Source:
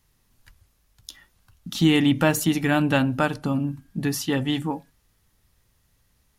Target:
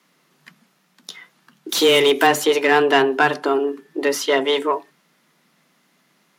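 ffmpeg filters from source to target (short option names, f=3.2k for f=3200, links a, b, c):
-filter_complex "[0:a]asettb=1/sr,asplit=3[a][b][c];[a]atrim=end=1.694[d];[b]atrim=start=1.69:end=2.27,asetpts=PTS-STARTPTS,afade=t=in:d=0.004:c=qsin,afade=t=out:st=0.576:d=0.004:c=qsin,aemphasis=mode=production:type=75fm[e];[c]atrim=start=2.266[f];[d][e]acrossfade=d=0.004:c1=hsin:c2=qsin[g];[g][f]acrossfade=d=0.004:c1=qsin:c2=hsin,asplit=2[h][i];[i]highpass=f=720:p=1,volume=18dB,asoftclip=type=tanh:threshold=-5dB[j];[h][j]amix=inputs=2:normalize=0,lowpass=f=2.1k:p=1,volume=-6dB,afreqshift=140,volume=1.5dB"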